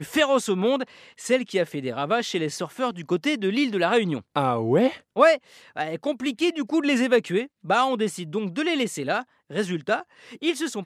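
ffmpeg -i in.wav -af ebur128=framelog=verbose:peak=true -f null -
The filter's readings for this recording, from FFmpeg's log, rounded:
Integrated loudness:
  I:         -24.3 LUFS
  Threshold: -34.4 LUFS
Loudness range:
  LRA:         2.9 LU
  Threshold: -44.1 LUFS
  LRA low:   -25.9 LUFS
  LRA high:  -23.0 LUFS
True peak:
  Peak:       -4.5 dBFS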